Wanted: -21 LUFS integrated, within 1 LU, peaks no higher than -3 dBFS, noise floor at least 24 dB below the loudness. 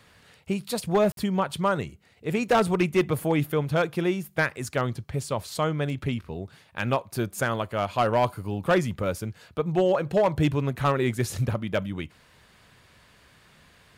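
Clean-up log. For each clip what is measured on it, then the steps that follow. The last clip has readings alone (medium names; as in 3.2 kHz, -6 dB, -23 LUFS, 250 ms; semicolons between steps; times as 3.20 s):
clipped samples 0.7%; clipping level -15.0 dBFS; dropouts 1; longest dropout 52 ms; loudness -26.5 LUFS; peak level -15.0 dBFS; loudness target -21.0 LUFS
-> clip repair -15 dBFS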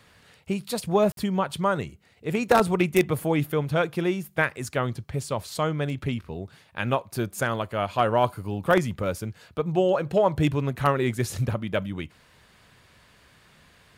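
clipped samples 0.0%; dropouts 1; longest dropout 52 ms
-> interpolate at 1.12 s, 52 ms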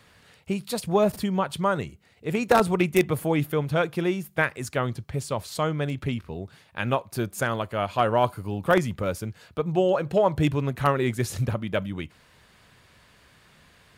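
dropouts 0; loudness -26.0 LUFS; peak level -6.0 dBFS; loudness target -21.0 LUFS
-> trim +5 dB; peak limiter -3 dBFS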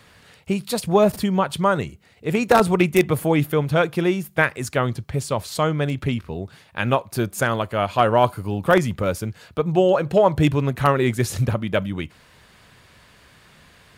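loudness -21.0 LUFS; peak level -3.0 dBFS; noise floor -53 dBFS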